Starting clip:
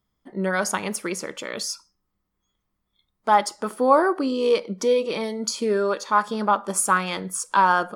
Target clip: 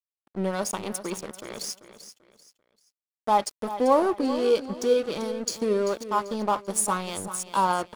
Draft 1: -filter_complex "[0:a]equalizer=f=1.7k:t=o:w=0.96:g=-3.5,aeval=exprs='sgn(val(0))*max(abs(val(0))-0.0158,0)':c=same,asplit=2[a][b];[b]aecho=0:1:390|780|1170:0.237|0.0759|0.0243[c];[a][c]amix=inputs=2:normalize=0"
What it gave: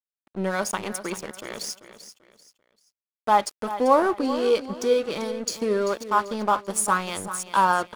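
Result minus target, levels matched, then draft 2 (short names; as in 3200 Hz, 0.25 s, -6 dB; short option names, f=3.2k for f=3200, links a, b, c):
2000 Hz band +5.5 dB
-filter_complex "[0:a]equalizer=f=1.7k:t=o:w=0.96:g=-14,aeval=exprs='sgn(val(0))*max(abs(val(0))-0.0158,0)':c=same,asplit=2[a][b];[b]aecho=0:1:390|780|1170:0.237|0.0759|0.0243[c];[a][c]amix=inputs=2:normalize=0"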